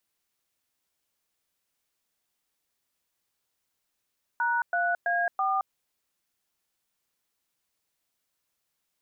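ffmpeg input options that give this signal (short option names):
-f lavfi -i "aevalsrc='0.0501*clip(min(mod(t,0.33),0.22-mod(t,0.33))/0.002,0,1)*(eq(floor(t/0.33),0)*(sin(2*PI*941*mod(t,0.33))+sin(2*PI*1477*mod(t,0.33)))+eq(floor(t/0.33),1)*(sin(2*PI*697*mod(t,0.33))+sin(2*PI*1477*mod(t,0.33)))+eq(floor(t/0.33),2)*(sin(2*PI*697*mod(t,0.33))+sin(2*PI*1633*mod(t,0.33)))+eq(floor(t/0.33),3)*(sin(2*PI*770*mod(t,0.33))+sin(2*PI*1209*mod(t,0.33))))':d=1.32:s=44100"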